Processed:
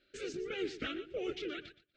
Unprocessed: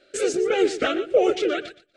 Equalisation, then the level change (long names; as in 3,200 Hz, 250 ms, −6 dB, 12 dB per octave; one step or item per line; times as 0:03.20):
guitar amp tone stack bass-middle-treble 6-0-2
dynamic equaliser 820 Hz, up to −4 dB, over −59 dBFS, Q 0.84
high-frequency loss of the air 190 metres
+9.0 dB